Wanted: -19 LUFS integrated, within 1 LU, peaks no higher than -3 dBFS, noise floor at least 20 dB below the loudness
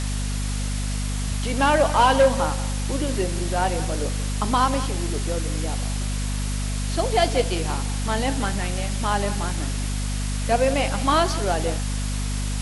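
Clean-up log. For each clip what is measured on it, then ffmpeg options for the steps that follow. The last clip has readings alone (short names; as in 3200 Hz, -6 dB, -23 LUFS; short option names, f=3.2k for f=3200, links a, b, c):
hum 50 Hz; harmonics up to 250 Hz; hum level -23 dBFS; noise floor -26 dBFS; noise floor target -44 dBFS; loudness -23.5 LUFS; peak -7.5 dBFS; loudness target -19.0 LUFS
-> -af "bandreject=f=50:t=h:w=4,bandreject=f=100:t=h:w=4,bandreject=f=150:t=h:w=4,bandreject=f=200:t=h:w=4,bandreject=f=250:t=h:w=4"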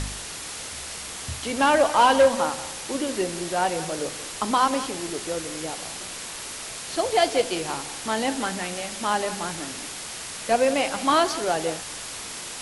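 hum none; noise floor -36 dBFS; noise floor target -45 dBFS
-> -af "afftdn=nr=9:nf=-36"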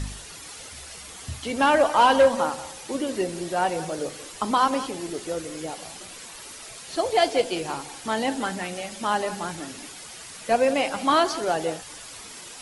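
noise floor -42 dBFS; noise floor target -45 dBFS
-> -af "afftdn=nr=6:nf=-42"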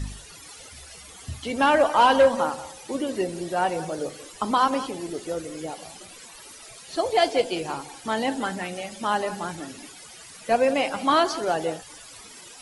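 noise floor -45 dBFS; loudness -24.5 LUFS; peak -9.0 dBFS; loudness target -19.0 LUFS
-> -af "volume=5.5dB"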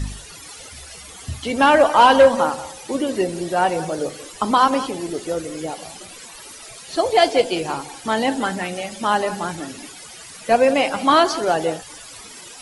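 loudness -19.0 LUFS; peak -3.5 dBFS; noise floor -40 dBFS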